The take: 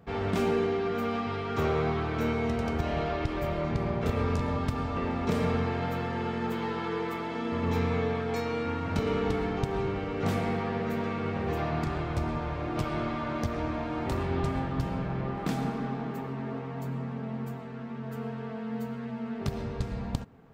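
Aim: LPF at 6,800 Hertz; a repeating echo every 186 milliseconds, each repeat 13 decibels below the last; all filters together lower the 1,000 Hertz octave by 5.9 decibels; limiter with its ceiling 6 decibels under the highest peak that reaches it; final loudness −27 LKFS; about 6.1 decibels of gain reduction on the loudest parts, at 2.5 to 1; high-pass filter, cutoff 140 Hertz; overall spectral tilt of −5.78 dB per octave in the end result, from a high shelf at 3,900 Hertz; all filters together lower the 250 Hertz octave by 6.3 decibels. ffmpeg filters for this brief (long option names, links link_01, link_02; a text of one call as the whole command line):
ffmpeg -i in.wav -af "highpass=140,lowpass=6800,equalizer=frequency=250:width_type=o:gain=-7,equalizer=frequency=1000:width_type=o:gain=-7,highshelf=frequency=3900:gain=-8,acompressor=threshold=-37dB:ratio=2.5,alimiter=level_in=7.5dB:limit=-24dB:level=0:latency=1,volume=-7.5dB,aecho=1:1:186|372|558:0.224|0.0493|0.0108,volume=13.5dB" out.wav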